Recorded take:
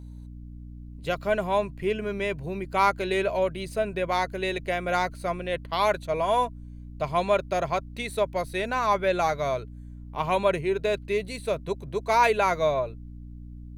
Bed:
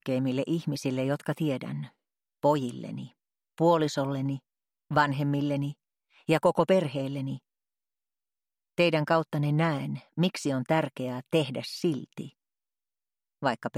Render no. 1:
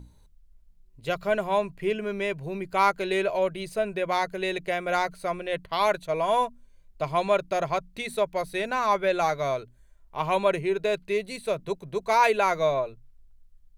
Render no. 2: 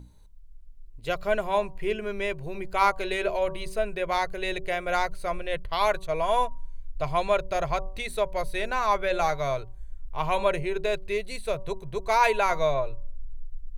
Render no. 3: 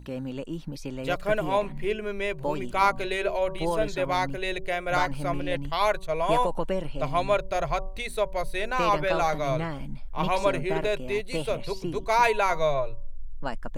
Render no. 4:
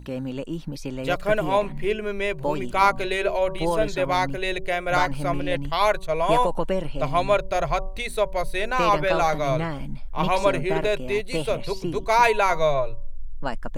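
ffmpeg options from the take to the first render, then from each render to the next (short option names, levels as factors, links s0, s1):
-af "bandreject=f=60:t=h:w=6,bandreject=f=120:t=h:w=6,bandreject=f=180:t=h:w=6,bandreject=f=240:t=h:w=6,bandreject=f=300:t=h:w=6"
-af "bandreject=f=190.2:t=h:w=4,bandreject=f=380.4:t=h:w=4,bandreject=f=570.6:t=h:w=4,bandreject=f=760.8:t=h:w=4,bandreject=f=951:t=h:w=4,bandreject=f=1141.2:t=h:w=4,asubboost=boost=12:cutoff=62"
-filter_complex "[1:a]volume=0.501[s0];[0:a][s0]amix=inputs=2:normalize=0"
-af "volume=1.5"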